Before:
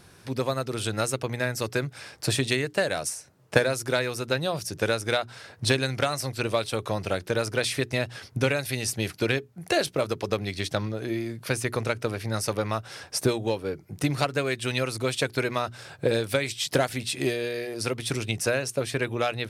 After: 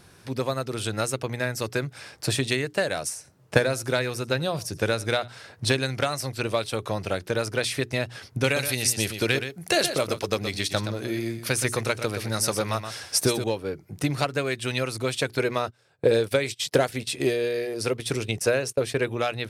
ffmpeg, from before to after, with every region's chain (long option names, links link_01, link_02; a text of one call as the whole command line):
ffmpeg -i in.wav -filter_complex "[0:a]asettb=1/sr,asplit=3[link_01][link_02][link_03];[link_01]atrim=end=3.154[link_04];[link_02]atrim=start=3.15:end=5.28,asetpts=PTS-STARTPTS,afade=type=in:duration=0.004:curve=qsin,afade=type=out:start_time=2.126:duration=0.004:curve=qsin,lowshelf=frequency=160:gain=4.5,aecho=1:1:87:0.0794,atrim=end_sample=93933[link_05];[link_03]atrim=start=5.276[link_06];[link_04][link_05]acrossfade=duration=0.004:curve1=hsin:curve2=qsin[link_07];[link_07][link_06]acrossfade=duration=0.004:curve1=qsin:curve2=hsin,asettb=1/sr,asplit=3[link_08][link_09][link_10];[link_08]atrim=end=8.444[link_11];[link_09]atrim=start=8.44:end=13.44,asetpts=PTS-STARTPTS,afade=type=in:duration=0.004:curve=qsin,afade=type=out:start_time=4.996:duration=0.004:curve=qsin,highshelf=frequency=3000:gain=7.5,aecho=1:1:122:0.355,atrim=end_sample=220500[link_12];[link_10]atrim=start=13.436[link_13];[link_11][link_12]acrossfade=duration=0.004:curve1=hsin:curve2=qsin[link_14];[link_14][link_13]acrossfade=duration=0.004:curve1=qsin:curve2=hsin,asettb=1/sr,asplit=3[link_15][link_16][link_17];[link_15]atrim=end=15.394[link_18];[link_16]atrim=start=15.39:end=19.11,asetpts=PTS-STARTPTS,afade=type=in:duration=0.004:curve=qsin,afade=type=out:start_time=3.716:duration=0.004:curve=qsin,agate=range=-21dB:threshold=-37dB:ratio=16:release=100:detection=peak,equalizer=frequency=450:width_type=o:width=0.55:gain=6[link_19];[link_17]atrim=start=19.106[link_20];[link_18][link_19]acrossfade=duration=0.004:curve1=hsin:curve2=qsin[link_21];[link_21][link_20]acrossfade=duration=0.004:curve1=qsin:curve2=hsin" out.wav